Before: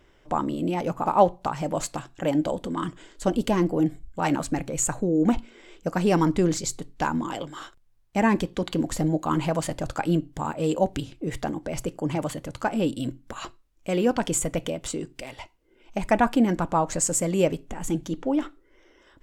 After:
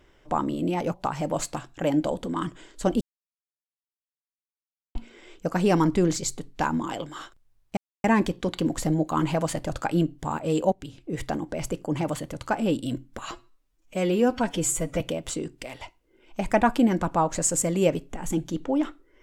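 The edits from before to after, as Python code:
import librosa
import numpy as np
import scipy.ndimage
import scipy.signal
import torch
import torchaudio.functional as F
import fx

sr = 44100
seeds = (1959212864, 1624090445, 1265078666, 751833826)

y = fx.edit(x, sr, fx.cut(start_s=0.94, length_s=0.41),
    fx.silence(start_s=3.42, length_s=1.94),
    fx.insert_silence(at_s=8.18, length_s=0.27),
    fx.fade_in_from(start_s=10.86, length_s=0.49, floor_db=-18.0),
    fx.stretch_span(start_s=13.45, length_s=1.13, factor=1.5), tone=tone)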